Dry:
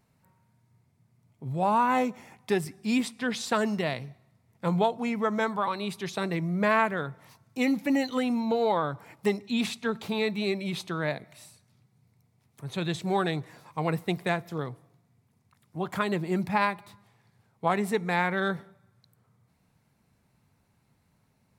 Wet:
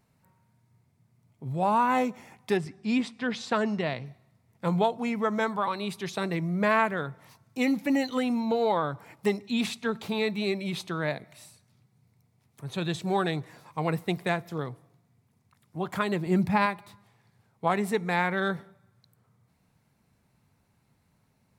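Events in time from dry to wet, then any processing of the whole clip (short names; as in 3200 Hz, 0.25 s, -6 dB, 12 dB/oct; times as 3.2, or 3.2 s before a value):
2.57–4.06 air absorption 93 m
12.69–13.24 notch 2100 Hz, Q 14
16.26–16.66 bell 86 Hz +8 dB 2.8 oct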